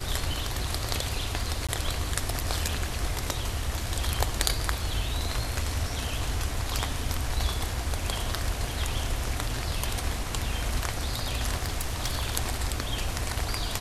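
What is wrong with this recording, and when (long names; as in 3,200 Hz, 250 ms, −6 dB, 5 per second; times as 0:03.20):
0:01.67–0:01.69: drop-out 16 ms
0:11.57–0:12.27: clipping −22.5 dBFS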